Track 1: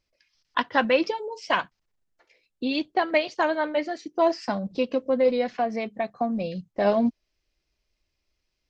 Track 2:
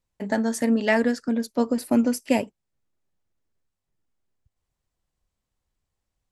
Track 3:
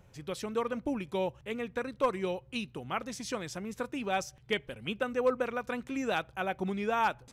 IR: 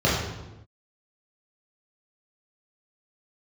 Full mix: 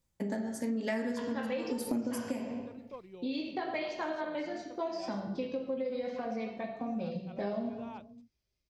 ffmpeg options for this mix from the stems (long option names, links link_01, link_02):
-filter_complex "[0:a]highshelf=frequency=3600:gain=9,adelay=600,volume=-13.5dB,asplit=2[link_01][link_02];[link_02]volume=-17.5dB[link_03];[1:a]highshelf=frequency=3900:gain=8.5,tremolo=f=1:d=0.89,volume=-2dB,asplit=2[link_04][link_05];[link_05]volume=-18.5dB[link_06];[2:a]lowpass=4100,equalizer=frequency=1600:width=1.5:gain=-12.5,adelay=900,volume=-16dB[link_07];[3:a]atrim=start_sample=2205[link_08];[link_03][link_06]amix=inputs=2:normalize=0[link_09];[link_09][link_08]afir=irnorm=-1:irlink=0[link_10];[link_01][link_04][link_07][link_10]amix=inputs=4:normalize=0,acompressor=threshold=-31dB:ratio=8"